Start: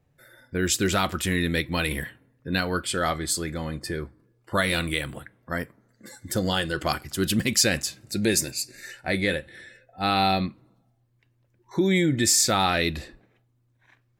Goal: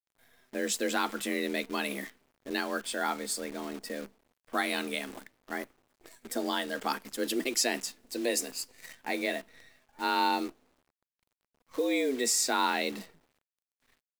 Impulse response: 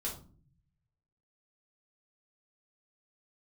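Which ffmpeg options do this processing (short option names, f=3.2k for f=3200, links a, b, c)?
-af "adynamicequalizer=threshold=0.0112:dfrequency=910:dqfactor=2.1:tfrequency=910:tqfactor=2.1:attack=5:release=100:ratio=0.375:range=2.5:mode=boostabove:tftype=bell,afreqshift=130,acrusher=bits=7:dc=4:mix=0:aa=0.000001,volume=-7.5dB"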